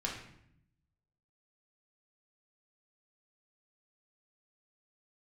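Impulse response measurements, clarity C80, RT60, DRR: 8.0 dB, 0.70 s, -3.0 dB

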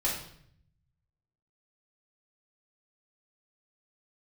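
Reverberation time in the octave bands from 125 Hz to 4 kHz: 1.5 s, 1.0 s, 0.70 s, 0.60 s, 0.60 s, 0.60 s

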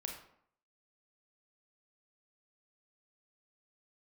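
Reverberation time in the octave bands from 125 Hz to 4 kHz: 0.65 s, 0.70 s, 0.65 s, 0.65 s, 0.55 s, 0.40 s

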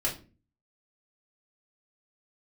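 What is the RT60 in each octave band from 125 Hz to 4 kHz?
0.65 s, 0.55 s, 0.40 s, 0.30 s, 0.30 s, 0.25 s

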